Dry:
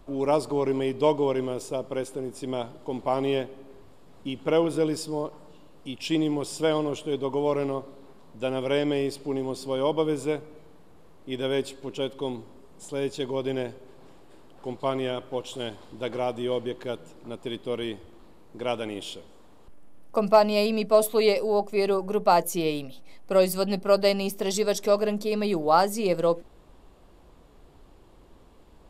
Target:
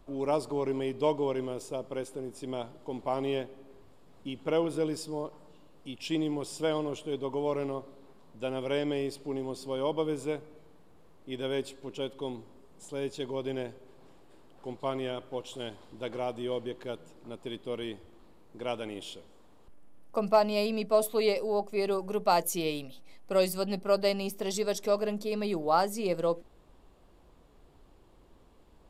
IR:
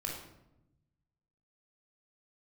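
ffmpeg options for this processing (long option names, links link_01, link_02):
-filter_complex "[0:a]asplit=3[link_01][link_02][link_03];[link_01]afade=type=out:start_time=21.9:duration=0.02[link_04];[link_02]adynamicequalizer=threshold=0.0224:dfrequency=2000:dqfactor=0.7:tfrequency=2000:tqfactor=0.7:attack=5:release=100:ratio=0.375:range=2.5:mode=boostabove:tftype=highshelf,afade=type=in:start_time=21.9:duration=0.02,afade=type=out:start_time=23.48:duration=0.02[link_05];[link_03]afade=type=in:start_time=23.48:duration=0.02[link_06];[link_04][link_05][link_06]amix=inputs=3:normalize=0,volume=-5.5dB"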